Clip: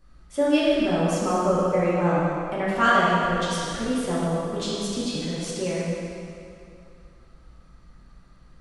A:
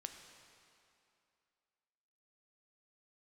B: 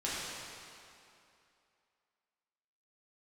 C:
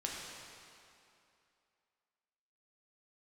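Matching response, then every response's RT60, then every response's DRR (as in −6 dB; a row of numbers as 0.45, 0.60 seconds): B; 2.6, 2.6, 2.6 seconds; 5.0, −9.0, −3.5 decibels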